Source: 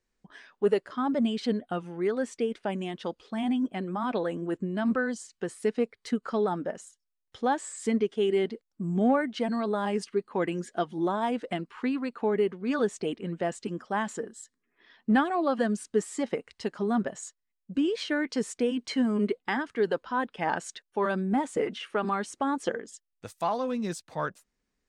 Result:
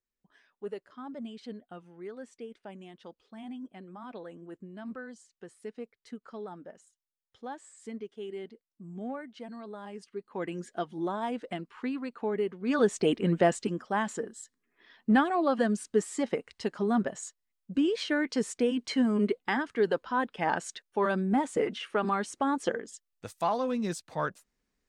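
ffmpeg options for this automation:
ffmpeg -i in.wav -af "volume=8dB,afade=type=in:start_time=10.04:duration=0.57:silence=0.334965,afade=type=in:start_time=12.53:duration=0.8:silence=0.237137,afade=type=out:start_time=13.33:duration=0.46:silence=0.398107" out.wav

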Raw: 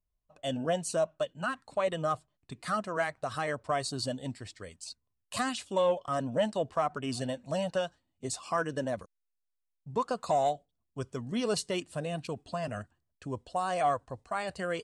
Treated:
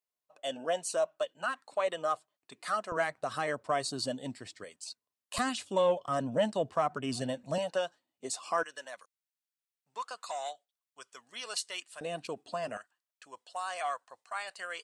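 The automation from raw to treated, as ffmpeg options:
ffmpeg -i in.wav -af "asetnsamples=nb_out_samples=441:pad=0,asendcmd='2.92 highpass f 180;4.64 highpass f 370;5.38 highpass f 110;7.58 highpass f 340;8.63 highpass f 1300;12.01 highpass f 300;12.77 highpass f 1100',highpass=450" out.wav

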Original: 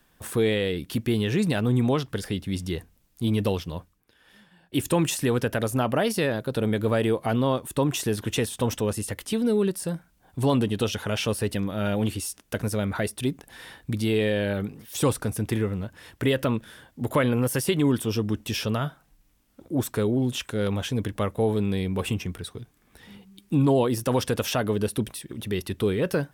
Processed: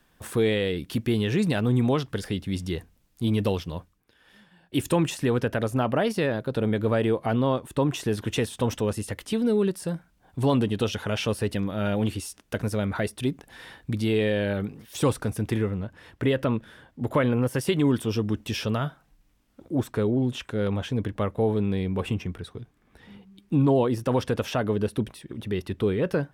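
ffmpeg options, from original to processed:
ffmpeg -i in.wav -af "asetnsamples=nb_out_samples=441:pad=0,asendcmd='4.96 lowpass f 3100;8.11 lowpass f 5100;15.71 lowpass f 2400;17.61 lowpass f 5000;19.8 lowpass f 2300',lowpass=frequency=7600:poles=1" out.wav

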